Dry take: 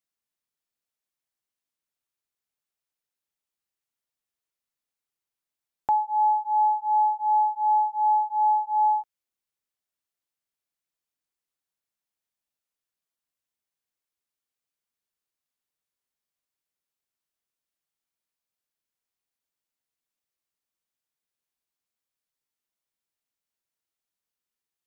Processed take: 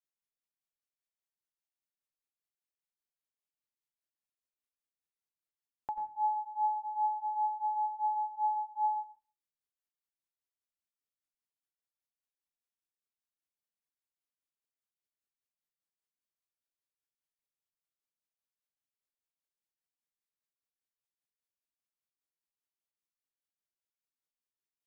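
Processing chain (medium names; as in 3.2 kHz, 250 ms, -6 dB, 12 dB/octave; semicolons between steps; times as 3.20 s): tremolo triangle 5 Hz, depth 95%; on a send: reverberation RT60 0.35 s, pre-delay 85 ms, DRR 8 dB; on the sum: trim -7.5 dB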